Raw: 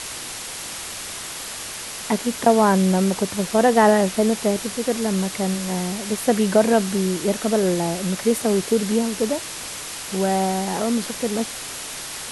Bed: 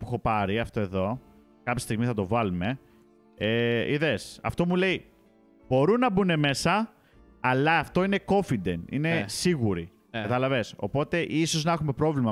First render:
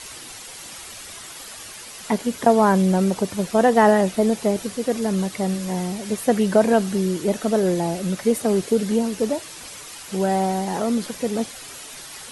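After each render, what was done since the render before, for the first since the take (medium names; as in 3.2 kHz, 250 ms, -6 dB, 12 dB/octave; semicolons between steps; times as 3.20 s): noise reduction 9 dB, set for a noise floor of -33 dBFS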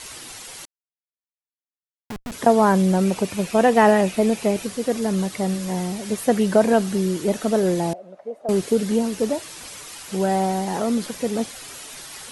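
0.65–2.32 s: Schmitt trigger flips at -21 dBFS; 3.05–4.65 s: peaking EQ 2.5 kHz +8 dB 0.34 oct; 7.93–8.49 s: band-pass filter 640 Hz, Q 5.4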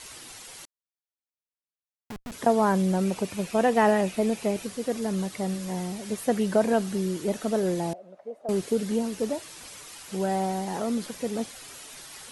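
trim -6 dB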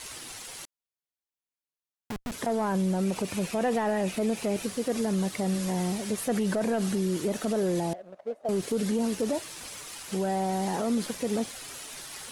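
waveshaping leveller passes 1; peak limiter -20 dBFS, peak gain reduction 11 dB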